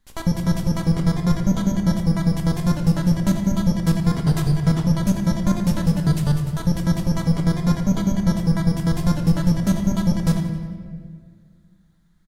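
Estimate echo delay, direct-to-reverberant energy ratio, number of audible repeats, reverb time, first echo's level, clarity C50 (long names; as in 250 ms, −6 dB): 88 ms, 3.0 dB, 1, 1.9 s, −13.5 dB, 5.5 dB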